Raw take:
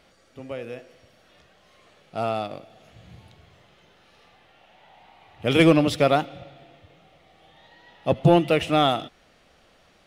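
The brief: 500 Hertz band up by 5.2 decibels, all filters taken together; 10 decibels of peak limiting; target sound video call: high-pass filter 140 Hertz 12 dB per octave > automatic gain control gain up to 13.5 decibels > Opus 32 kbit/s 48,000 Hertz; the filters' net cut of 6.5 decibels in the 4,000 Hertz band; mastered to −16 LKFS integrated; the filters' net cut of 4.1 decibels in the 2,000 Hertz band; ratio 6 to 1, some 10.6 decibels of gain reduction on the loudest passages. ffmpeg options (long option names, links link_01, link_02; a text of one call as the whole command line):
ffmpeg -i in.wav -af "equalizer=frequency=500:width_type=o:gain=6.5,equalizer=frequency=2000:width_type=o:gain=-3,equalizer=frequency=4000:width_type=o:gain=-7.5,acompressor=threshold=-20dB:ratio=6,alimiter=limit=-20.5dB:level=0:latency=1,highpass=140,dynaudnorm=maxgain=13.5dB,volume=16.5dB" -ar 48000 -c:a libopus -b:a 32k out.opus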